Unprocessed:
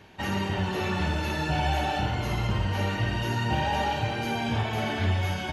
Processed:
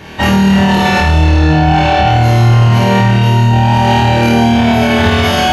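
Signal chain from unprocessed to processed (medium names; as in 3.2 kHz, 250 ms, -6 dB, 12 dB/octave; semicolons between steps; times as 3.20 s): 1.18–2.07 s: distance through air 94 m; flutter echo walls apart 4.4 m, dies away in 1.3 s; loudness maximiser +18.5 dB; trim -1 dB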